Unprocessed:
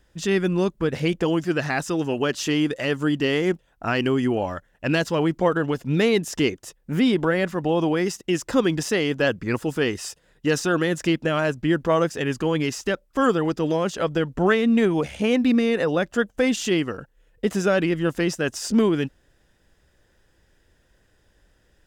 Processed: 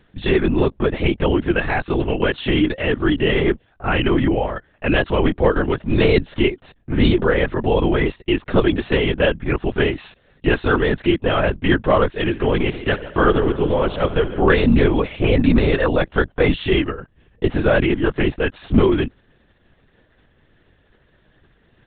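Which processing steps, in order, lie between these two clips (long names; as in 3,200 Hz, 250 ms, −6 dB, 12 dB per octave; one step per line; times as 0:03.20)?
0:12.26–0:14.42: echo machine with several playback heads 71 ms, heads first and second, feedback 45%, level −16 dB
linear-prediction vocoder at 8 kHz whisper
level +4.5 dB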